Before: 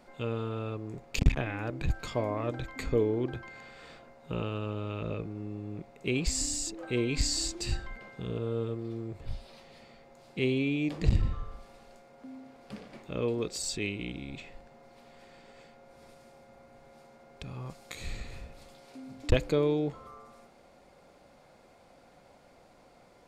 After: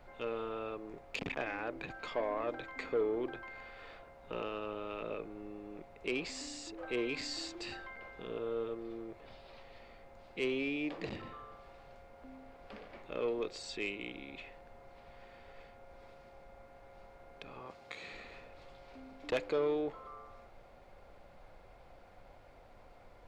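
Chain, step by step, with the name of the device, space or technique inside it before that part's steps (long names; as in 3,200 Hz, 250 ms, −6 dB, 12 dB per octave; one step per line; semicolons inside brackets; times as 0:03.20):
aircraft cabin announcement (band-pass filter 400–3,100 Hz; soft clipping −25 dBFS, distortion −16 dB; brown noise bed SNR 17 dB)
0:17.60–0:18.13: high-pass filter 89 Hz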